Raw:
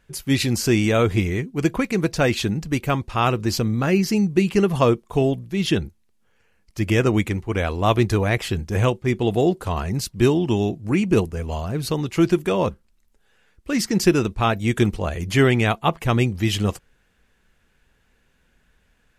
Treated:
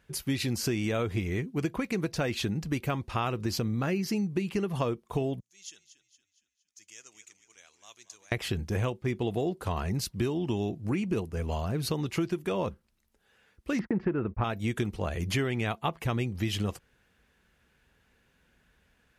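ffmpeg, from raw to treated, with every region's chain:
-filter_complex "[0:a]asettb=1/sr,asplit=3[a][b][c];[a]atrim=end=5.404[d];[b]atrim=start=5.4:end=8.32,asetpts=PTS-STARTPTS,afade=t=in:d=0.004:c=qsin,afade=t=out:st=2.916:d=0.004:c=qsin,bandpass=f=6.7k:t=q:w=6.5,asplit=6[e][f][g][h][i][j];[f]adelay=232,afreqshift=-34,volume=-13dB[k];[g]adelay=464,afreqshift=-68,volume=-19.4dB[l];[h]adelay=696,afreqshift=-102,volume=-25.8dB[m];[i]adelay=928,afreqshift=-136,volume=-32.1dB[n];[j]adelay=1160,afreqshift=-170,volume=-38.5dB[o];[e][k][l][m][n][o]amix=inputs=6:normalize=0,atrim=end_sample=128772[p];[c]atrim=start=8.316[q];[d][p]acrossfade=d=0.004:c1=hsin:c2=qsin[r];[r][q]acrossfade=d=0.004:c1=qsin:c2=hsin,asettb=1/sr,asplit=3[s][t][u];[s]atrim=end=13.794[v];[t]atrim=start=13.79:end=14.44,asetpts=PTS-STARTPTS,afade=t=in:d=0.004:c=qsin,afade=t=out:st=0.646:d=0.004:c=qsin,lowpass=f=1.9k:w=0.5412,lowpass=f=1.9k:w=1.3066,acontrast=47,agate=range=-48dB:threshold=-32dB:ratio=16:release=100:detection=peak[w];[u]atrim=start=14.436[x];[v][w]acrossfade=d=0.004:c1=hsin:c2=qsin[y];[y][x]acrossfade=d=0.004:c1=qsin:c2=hsin,highpass=47,equalizer=f=7.6k:w=2.6:g=-3,acompressor=threshold=-24dB:ratio=6,volume=-2.5dB"

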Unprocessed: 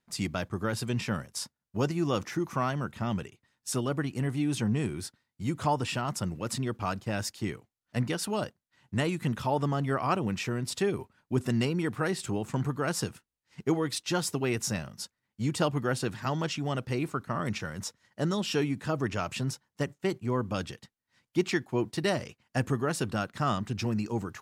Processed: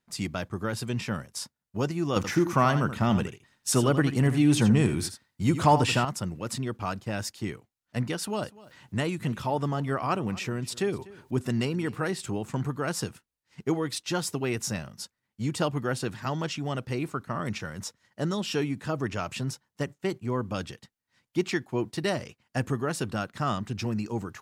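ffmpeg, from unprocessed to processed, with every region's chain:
-filter_complex "[0:a]asettb=1/sr,asplit=3[a][b][c];[a]atrim=end=2.164[d];[b]atrim=start=2.16:end=6.05,asetpts=PTS-STARTPTS,afade=t=in:d=0.004:c=qsin,afade=t=out:st=3.886:d=0.004:c=qsin,acontrast=83,aecho=1:1:81:0.282,atrim=end_sample=171549[e];[c]atrim=start=6.046[f];[d][e]acrossfade=d=0.004:c1=hsin:c2=qsin[g];[g][f]acrossfade=d=0.004:c1=qsin:c2=hsin,asettb=1/sr,asplit=3[h][i][j];[h]atrim=end=8.184[k];[i]atrim=start=8.18:end=12.1,asetpts=PTS-STARTPTS,afade=t=in:d=0.004:c=qsin,afade=t=out:st=3.916:d=0.004:c=qsin,acompressor=mode=upward:threshold=-40dB:ratio=2.5:attack=3.2:release=140:knee=2.83:detection=peak,aecho=1:1:246:0.0944,atrim=end_sample=172872[l];[j]atrim=start=12.096[m];[k][l]acrossfade=d=0.004:c1=hsin:c2=qsin[n];[n][m]acrossfade=d=0.004:c1=qsin:c2=hsin"

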